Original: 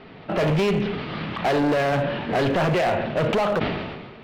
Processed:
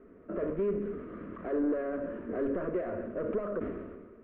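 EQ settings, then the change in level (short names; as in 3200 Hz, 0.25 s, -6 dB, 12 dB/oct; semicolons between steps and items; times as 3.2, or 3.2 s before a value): LPF 1300 Hz 24 dB/oct; fixed phaser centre 340 Hz, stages 4; -6.5 dB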